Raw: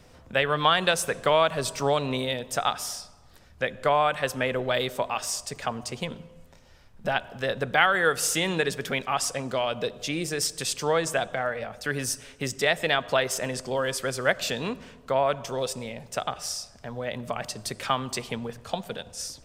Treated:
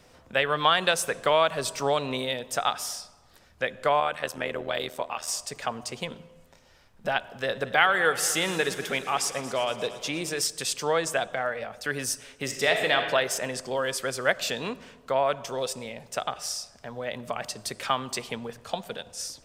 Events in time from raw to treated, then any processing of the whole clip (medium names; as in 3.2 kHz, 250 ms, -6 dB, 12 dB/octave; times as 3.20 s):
4.00–5.28 s: AM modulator 79 Hz, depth 65%
7.32–10.41 s: multi-head delay 116 ms, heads first and second, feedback 65%, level -18.5 dB
12.43–12.96 s: reverb throw, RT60 1.5 s, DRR 3.5 dB
whole clip: bass shelf 200 Hz -8 dB